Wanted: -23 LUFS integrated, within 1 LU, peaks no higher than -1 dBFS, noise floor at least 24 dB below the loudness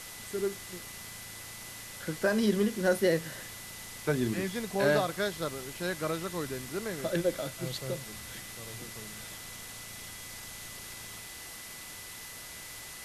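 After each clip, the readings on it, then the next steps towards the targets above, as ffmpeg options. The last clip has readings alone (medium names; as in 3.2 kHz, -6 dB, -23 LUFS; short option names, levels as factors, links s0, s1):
steady tone 2 kHz; tone level -51 dBFS; noise floor -45 dBFS; noise floor target -58 dBFS; loudness -34.0 LUFS; peak level -13.5 dBFS; loudness target -23.0 LUFS
-> -af "bandreject=f=2000:w=30"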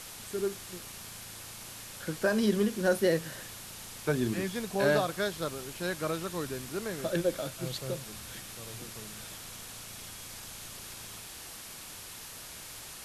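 steady tone not found; noise floor -46 dBFS; noise floor target -58 dBFS
-> -af "afftdn=nr=12:nf=-46"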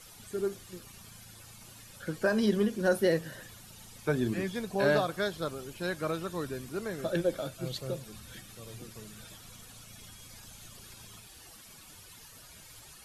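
noise floor -52 dBFS; noise floor target -56 dBFS
-> -af "afftdn=nr=6:nf=-52"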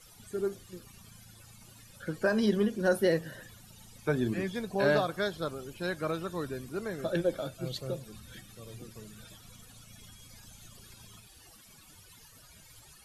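noise floor -56 dBFS; loudness -32.0 LUFS; peak level -14.0 dBFS; loudness target -23.0 LUFS
-> -af "volume=2.82"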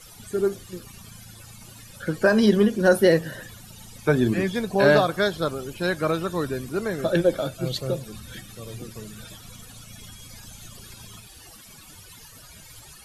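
loudness -22.5 LUFS; peak level -5.0 dBFS; noise floor -47 dBFS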